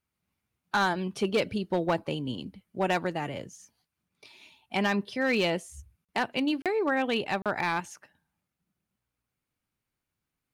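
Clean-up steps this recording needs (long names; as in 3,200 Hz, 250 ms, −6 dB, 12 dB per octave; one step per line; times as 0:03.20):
clipped peaks rebuilt −19 dBFS
repair the gap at 0:06.05/0:06.62/0:07.42, 37 ms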